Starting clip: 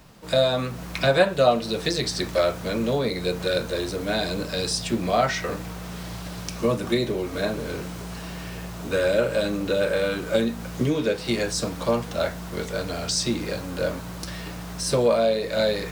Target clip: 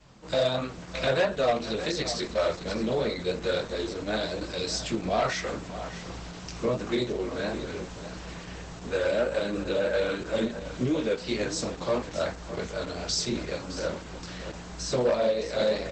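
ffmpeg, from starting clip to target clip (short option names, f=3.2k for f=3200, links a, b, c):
-af "adynamicequalizer=threshold=0.00891:dfrequency=120:dqfactor=1.4:tfrequency=120:tqfactor=1.4:attack=5:release=100:ratio=0.375:range=2.5:mode=cutabove:tftype=bell,flanger=delay=18.5:depth=5.9:speed=2.9,asoftclip=type=hard:threshold=-18.5dB,aecho=1:1:612:0.237" -ar 48000 -c:a libopus -b:a 12k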